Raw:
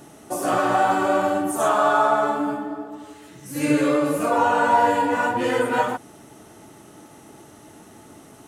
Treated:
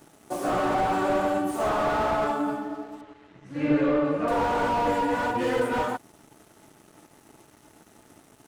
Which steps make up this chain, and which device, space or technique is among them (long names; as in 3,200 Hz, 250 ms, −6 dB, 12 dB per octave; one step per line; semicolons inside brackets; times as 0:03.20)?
early transistor amplifier (dead-zone distortion −48.5 dBFS; slew-rate limiting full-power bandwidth 83 Hz)
0:03.01–0:04.28: low-pass filter 2,700 Hz 12 dB per octave
level −2.5 dB